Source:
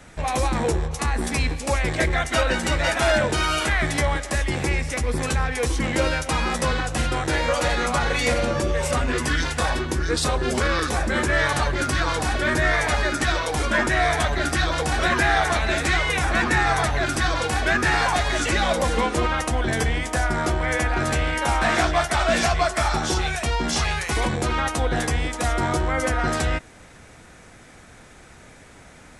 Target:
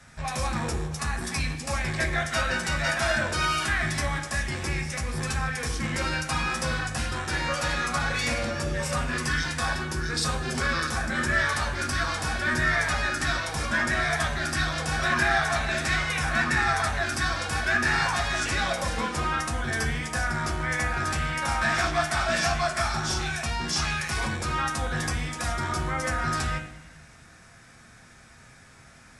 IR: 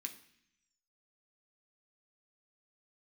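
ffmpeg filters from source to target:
-filter_complex "[1:a]atrim=start_sample=2205,asetrate=29988,aresample=44100[a];[0:a][a]afir=irnorm=-1:irlink=0,volume=-3.5dB"

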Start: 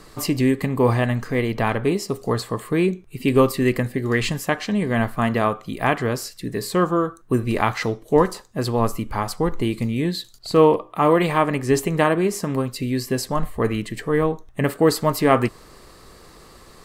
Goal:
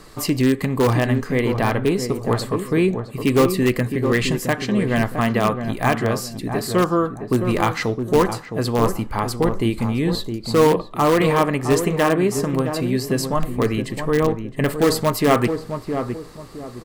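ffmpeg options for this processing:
-filter_complex "[0:a]asplit=2[a][b];[b]aeval=exprs='(mod(3.35*val(0)+1,2)-1)/3.35':c=same,volume=-10dB[c];[a][c]amix=inputs=2:normalize=0,asplit=2[d][e];[e]adelay=664,lowpass=f=910:p=1,volume=-6.5dB,asplit=2[f][g];[g]adelay=664,lowpass=f=910:p=1,volume=0.35,asplit=2[h][i];[i]adelay=664,lowpass=f=910:p=1,volume=0.35,asplit=2[j][k];[k]adelay=664,lowpass=f=910:p=1,volume=0.35[l];[d][f][h][j][l]amix=inputs=5:normalize=0,volume=-1dB"

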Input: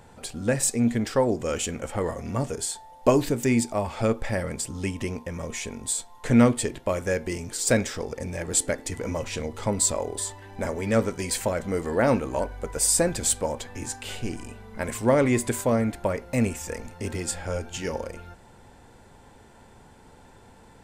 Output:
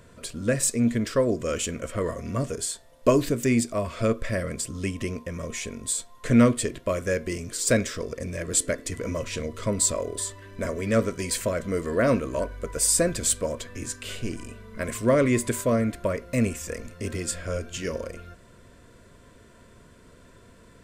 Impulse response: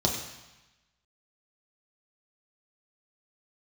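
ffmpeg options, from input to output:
-af "asuperstop=centerf=820:order=8:qfactor=3.4"

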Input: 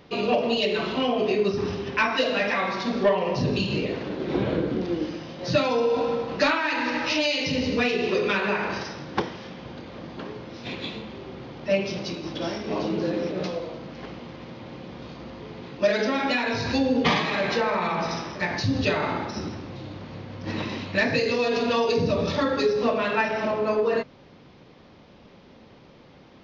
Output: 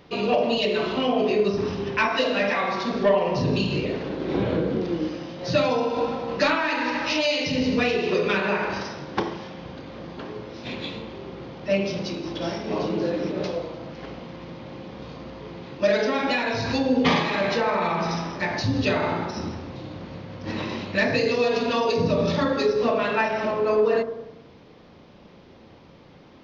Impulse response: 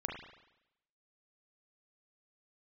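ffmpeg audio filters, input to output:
-filter_complex "[0:a]asplit=2[a][b];[1:a]atrim=start_sample=2205,lowpass=f=1.3k:w=0.5412,lowpass=f=1.3k:w=1.3066,adelay=35[c];[b][c]afir=irnorm=-1:irlink=0,volume=-6.5dB[d];[a][d]amix=inputs=2:normalize=0"

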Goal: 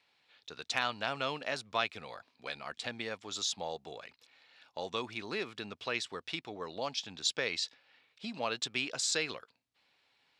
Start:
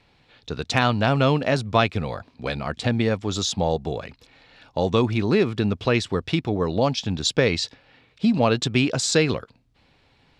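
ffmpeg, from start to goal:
-af "highpass=f=1.4k:p=1,volume=-7.5dB"

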